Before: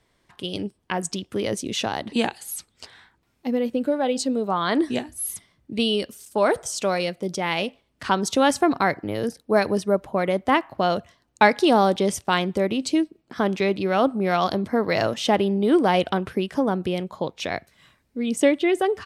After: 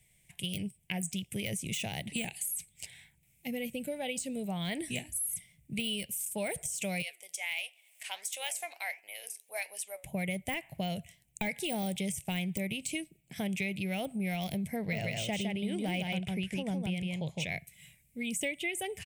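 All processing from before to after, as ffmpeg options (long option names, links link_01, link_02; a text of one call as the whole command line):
ffmpeg -i in.wav -filter_complex "[0:a]asettb=1/sr,asplit=3[link_01][link_02][link_03];[link_01]atrim=end=7.024[link_04];[link_02]atrim=start=7.02:end=10.04,asetpts=PTS-STARTPTS,afade=type=in:duration=0.004:curve=qsin,afade=type=out:start_time=3.016:duration=0.004:curve=qsin,highpass=frequency=680:width=0.5412,highpass=frequency=680:width=1.3066,acompressor=mode=upward:threshold=-44dB:ratio=2.5:attack=3.2:release=140:knee=2.83:detection=peak,flanger=delay=5.3:depth=7.2:regen=82:speed=1.5:shape=sinusoidal[link_05];[link_03]atrim=start=10.036[link_06];[link_04][link_05]acrossfade=duration=0.004:curve1=hsin:curve2=qsin[link_07];[link_07][link_06]acrossfade=duration=0.004:curve1=qsin:curve2=hsin,asettb=1/sr,asplit=3[link_08][link_09][link_10];[link_08]atrim=end=14.764[link_11];[link_09]atrim=start=14.76:end=17.49,asetpts=PTS-STARTPTS,afade=type=in:duration=0.004:curve=qsin,afade=type=out:start_time=2.726:duration=0.004:curve=qsin,lowpass=6800,aecho=1:1:160:0.668,atrim=end_sample=120393[link_12];[link_10]atrim=start=17.486[link_13];[link_11][link_12]acrossfade=duration=0.004:curve1=hsin:curve2=qsin[link_14];[link_14][link_13]acrossfade=duration=0.004:curve1=qsin:curve2=hsin,deesser=0.75,firequalizer=gain_entry='entry(110,0);entry(150,7);entry(260,-14);entry(390,-14);entry(690,-9);entry(1200,-28);entry(2200,6);entry(4400,-8);entry(7800,12);entry(12000,14)':delay=0.05:min_phase=1,acompressor=threshold=-30dB:ratio=4,volume=-1.5dB" out.wav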